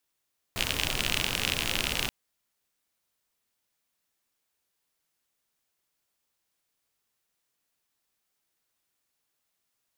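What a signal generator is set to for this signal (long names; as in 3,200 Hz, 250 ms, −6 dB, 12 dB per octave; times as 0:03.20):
rain-like ticks over hiss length 1.53 s, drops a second 52, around 2,800 Hz, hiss −2 dB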